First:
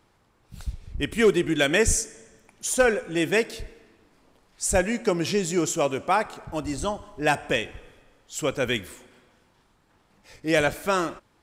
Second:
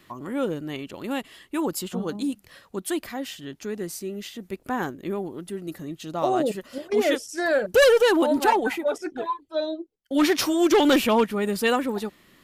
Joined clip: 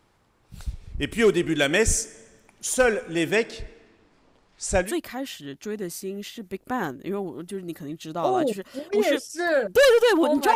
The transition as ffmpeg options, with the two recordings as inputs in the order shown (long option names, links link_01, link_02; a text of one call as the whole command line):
ffmpeg -i cue0.wav -i cue1.wav -filter_complex "[0:a]asettb=1/sr,asplit=3[link_01][link_02][link_03];[link_01]atrim=end=3.354[link_04];[link_02]atrim=start=3.35:end=4.95,asetpts=PTS-STARTPTS,afade=type=in:duration=0.004:curve=qsin,afade=type=out:start_time=1.596:duration=0.004:curve=qsin,lowpass=6900[link_05];[link_03]atrim=start=4.946[link_06];[link_04][link_05]acrossfade=duration=0.004:curve1=hsin:curve2=qsin[link_07];[link_07][link_06]acrossfade=duration=0.004:curve1=qsin:curve2=hsin,apad=whole_dur=10.55,atrim=end=10.55,atrim=end=4.95,asetpts=PTS-STARTPTS[link_08];[1:a]atrim=start=2.76:end=8.54,asetpts=PTS-STARTPTS[link_09];[link_08][link_09]acrossfade=duration=0.18:curve1=tri:curve2=tri" out.wav